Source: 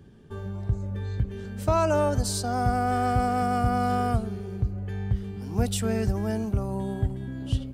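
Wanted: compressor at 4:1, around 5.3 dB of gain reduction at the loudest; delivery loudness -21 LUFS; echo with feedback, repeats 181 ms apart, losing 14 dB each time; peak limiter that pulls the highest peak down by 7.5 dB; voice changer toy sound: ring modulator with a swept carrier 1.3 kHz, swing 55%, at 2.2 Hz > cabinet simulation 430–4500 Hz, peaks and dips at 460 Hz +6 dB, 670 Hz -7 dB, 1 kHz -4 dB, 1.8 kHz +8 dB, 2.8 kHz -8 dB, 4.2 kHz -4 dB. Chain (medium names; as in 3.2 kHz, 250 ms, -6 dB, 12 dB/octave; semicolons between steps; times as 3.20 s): compression 4:1, threshold -25 dBFS; peak limiter -23 dBFS; feedback delay 181 ms, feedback 20%, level -14 dB; ring modulator with a swept carrier 1.3 kHz, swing 55%, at 2.2 Hz; cabinet simulation 430–4500 Hz, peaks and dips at 460 Hz +6 dB, 670 Hz -7 dB, 1 kHz -4 dB, 1.8 kHz +8 dB, 2.8 kHz -8 dB, 4.2 kHz -4 dB; trim +11 dB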